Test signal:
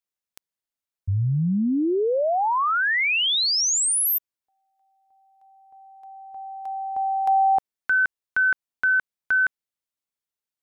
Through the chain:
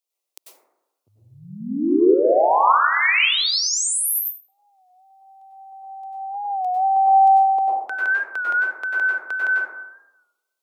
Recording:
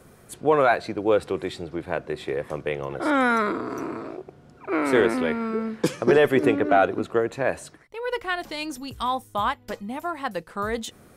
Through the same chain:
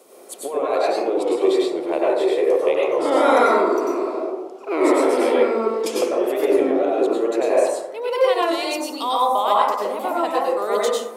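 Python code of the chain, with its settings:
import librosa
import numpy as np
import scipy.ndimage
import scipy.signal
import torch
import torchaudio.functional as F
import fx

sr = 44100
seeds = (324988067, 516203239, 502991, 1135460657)

y = scipy.signal.sosfilt(scipy.signal.butter(4, 360.0, 'highpass', fs=sr, output='sos'), x)
y = fx.peak_eq(y, sr, hz=1600.0, db=-15.0, octaves=0.67)
y = fx.over_compress(y, sr, threshold_db=-26.0, ratio=-1.0)
y = fx.rev_plate(y, sr, seeds[0], rt60_s=1.0, hf_ratio=0.3, predelay_ms=85, drr_db=-6.0)
y = fx.record_warp(y, sr, rpm=33.33, depth_cents=100.0)
y = y * 10.0 ** (2.5 / 20.0)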